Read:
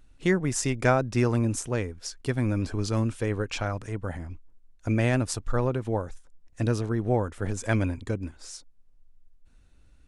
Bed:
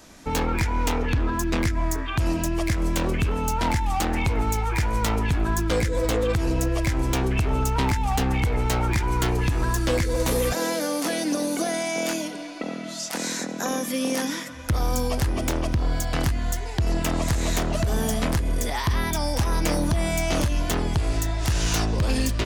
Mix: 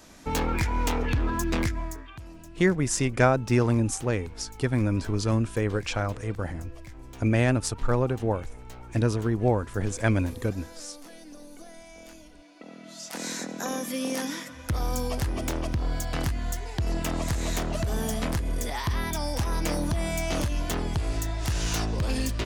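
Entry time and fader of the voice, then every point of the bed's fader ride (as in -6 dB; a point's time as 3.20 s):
2.35 s, +1.5 dB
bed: 1.63 s -2.5 dB
2.28 s -21.5 dB
12.22 s -21.5 dB
13.29 s -4.5 dB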